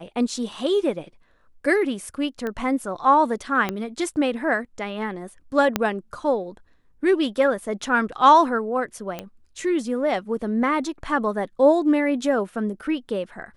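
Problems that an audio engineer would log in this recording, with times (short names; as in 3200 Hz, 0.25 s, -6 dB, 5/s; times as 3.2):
2.47 pop -17 dBFS
3.69 pop -11 dBFS
5.76 pop -5 dBFS
9.19 pop -16 dBFS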